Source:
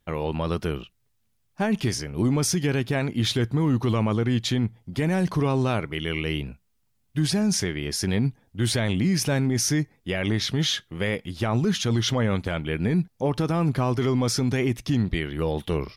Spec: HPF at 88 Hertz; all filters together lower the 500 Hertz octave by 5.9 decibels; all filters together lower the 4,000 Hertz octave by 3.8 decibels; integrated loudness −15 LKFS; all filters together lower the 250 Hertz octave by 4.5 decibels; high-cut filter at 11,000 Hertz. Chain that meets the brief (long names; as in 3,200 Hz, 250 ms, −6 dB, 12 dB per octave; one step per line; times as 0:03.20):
high-pass filter 88 Hz
low-pass filter 11,000 Hz
parametric band 250 Hz −4.5 dB
parametric band 500 Hz −6 dB
parametric band 4,000 Hz −5 dB
level +13.5 dB